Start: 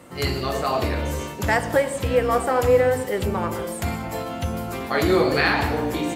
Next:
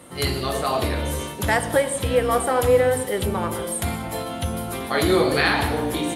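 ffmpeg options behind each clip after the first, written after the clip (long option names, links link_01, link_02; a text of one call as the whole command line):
ffmpeg -i in.wav -af "superequalizer=13b=1.78:16b=3.16" out.wav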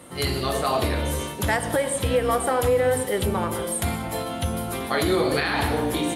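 ffmpeg -i in.wav -af "alimiter=limit=-12.5dB:level=0:latency=1:release=103" out.wav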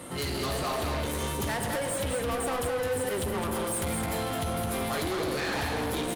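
ffmpeg -i in.wav -af "acompressor=threshold=-25dB:ratio=3,asoftclip=type=tanh:threshold=-32.5dB,aecho=1:1:213:0.596,volume=3.5dB" out.wav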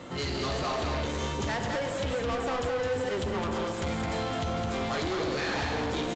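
ffmpeg -i in.wav -af "aresample=16000,aresample=44100" out.wav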